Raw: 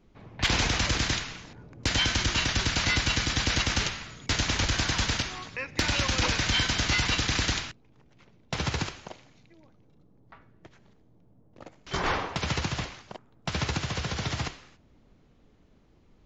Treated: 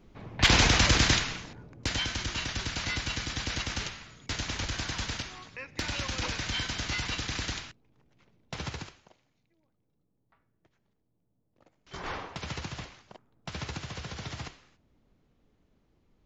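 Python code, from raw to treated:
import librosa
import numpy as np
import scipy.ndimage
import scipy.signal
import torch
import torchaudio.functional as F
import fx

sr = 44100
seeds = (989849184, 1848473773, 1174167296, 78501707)

y = fx.gain(x, sr, db=fx.line((1.33, 4.0), (2.08, -7.0), (8.67, -7.0), (9.1, -17.0), (11.64, -17.0), (12.17, -8.0)))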